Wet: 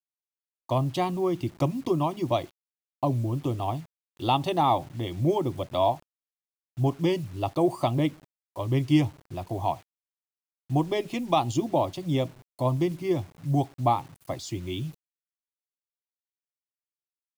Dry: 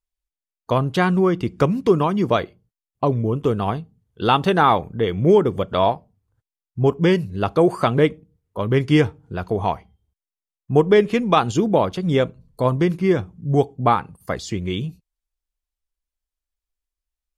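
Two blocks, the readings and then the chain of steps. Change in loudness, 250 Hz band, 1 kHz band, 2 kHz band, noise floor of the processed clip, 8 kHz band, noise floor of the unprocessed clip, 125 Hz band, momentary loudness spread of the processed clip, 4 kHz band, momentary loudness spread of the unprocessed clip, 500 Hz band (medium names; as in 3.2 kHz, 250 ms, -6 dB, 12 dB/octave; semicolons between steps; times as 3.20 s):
-7.5 dB, -7.0 dB, -6.0 dB, -13.5 dB, under -85 dBFS, no reading, under -85 dBFS, -5.5 dB, 10 LU, -6.5 dB, 11 LU, -9.5 dB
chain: static phaser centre 300 Hz, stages 8; word length cut 8-bit, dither none; trim -4 dB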